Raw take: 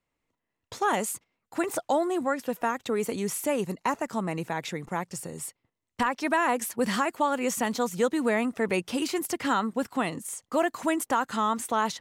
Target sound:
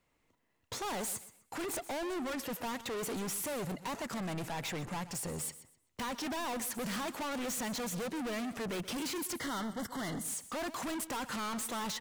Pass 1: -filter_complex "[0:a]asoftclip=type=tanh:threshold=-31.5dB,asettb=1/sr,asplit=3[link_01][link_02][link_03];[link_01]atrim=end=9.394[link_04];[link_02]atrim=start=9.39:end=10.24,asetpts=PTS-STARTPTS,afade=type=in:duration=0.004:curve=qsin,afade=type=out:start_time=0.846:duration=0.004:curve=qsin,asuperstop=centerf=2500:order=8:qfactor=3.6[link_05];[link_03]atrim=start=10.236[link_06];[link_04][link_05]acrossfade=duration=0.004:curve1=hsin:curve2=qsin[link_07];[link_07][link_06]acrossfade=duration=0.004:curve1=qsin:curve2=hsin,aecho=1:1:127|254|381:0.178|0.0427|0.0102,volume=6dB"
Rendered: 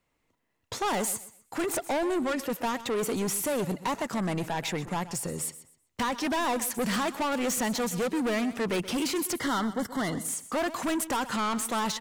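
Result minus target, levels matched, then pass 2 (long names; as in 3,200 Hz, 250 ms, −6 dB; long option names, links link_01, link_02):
soft clipping: distortion −4 dB
-filter_complex "[0:a]asoftclip=type=tanh:threshold=-42dB,asettb=1/sr,asplit=3[link_01][link_02][link_03];[link_01]atrim=end=9.394[link_04];[link_02]atrim=start=9.39:end=10.24,asetpts=PTS-STARTPTS,afade=type=in:duration=0.004:curve=qsin,afade=type=out:start_time=0.846:duration=0.004:curve=qsin,asuperstop=centerf=2500:order=8:qfactor=3.6[link_05];[link_03]atrim=start=10.236[link_06];[link_04][link_05]acrossfade=duration=0.004:curve1=hsin:curve2=qsin[link_07];[link_07][link_06]acrossfade=duration=0.004:curve1=qsin:curve2=hsin,aecho=1:1:127|254|381:0.178|0.0427|0.0102,volume=6dB"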